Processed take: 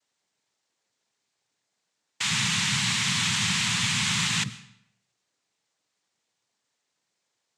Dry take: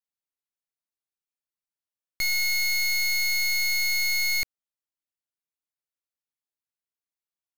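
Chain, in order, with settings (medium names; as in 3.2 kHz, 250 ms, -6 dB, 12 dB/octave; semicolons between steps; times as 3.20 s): power-law waveshaper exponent 0.7; frequency shift -100 Hz; noise-vocoded speech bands 6; algorithmic reverb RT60 0.71 s, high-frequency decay 0.9×, pre-delay 75 ms, DRR 17 dB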